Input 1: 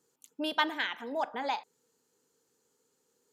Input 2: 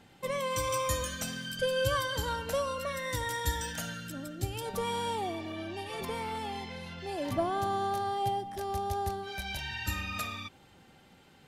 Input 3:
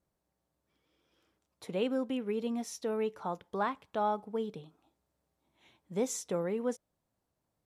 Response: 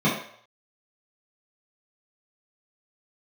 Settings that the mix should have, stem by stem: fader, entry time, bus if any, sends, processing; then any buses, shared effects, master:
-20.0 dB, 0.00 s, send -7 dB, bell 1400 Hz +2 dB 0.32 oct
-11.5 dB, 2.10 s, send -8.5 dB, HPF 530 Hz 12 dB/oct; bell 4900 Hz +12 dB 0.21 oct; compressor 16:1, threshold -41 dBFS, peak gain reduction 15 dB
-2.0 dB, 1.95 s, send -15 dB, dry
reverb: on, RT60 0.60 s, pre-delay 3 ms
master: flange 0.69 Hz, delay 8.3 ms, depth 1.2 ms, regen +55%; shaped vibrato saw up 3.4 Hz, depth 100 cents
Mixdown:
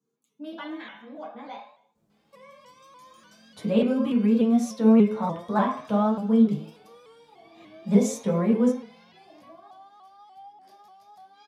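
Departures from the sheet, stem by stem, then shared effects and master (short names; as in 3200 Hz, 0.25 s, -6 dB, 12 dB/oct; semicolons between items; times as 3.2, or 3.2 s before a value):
stem 1 -20.0 dB -> -13.0 dB; stem 3 -2.0 dB -> +7.5 dB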